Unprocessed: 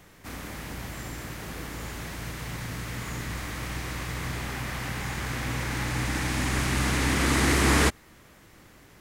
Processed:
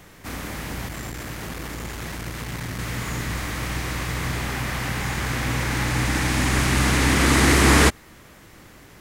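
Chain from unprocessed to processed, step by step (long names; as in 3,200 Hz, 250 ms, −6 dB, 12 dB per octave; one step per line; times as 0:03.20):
0:00.88–0:02.79: saturating transformer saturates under 250 Hz
level +6 dB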